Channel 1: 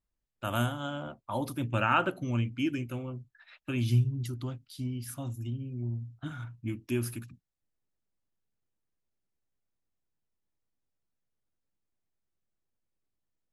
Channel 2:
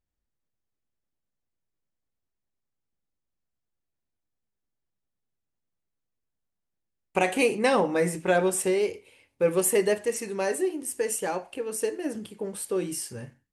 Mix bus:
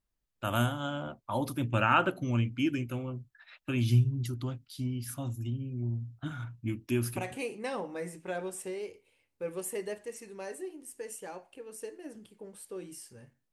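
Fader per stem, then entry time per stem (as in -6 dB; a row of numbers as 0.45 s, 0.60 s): +1.0 dB, -13.5 dB; 0.00 s, 0.00 s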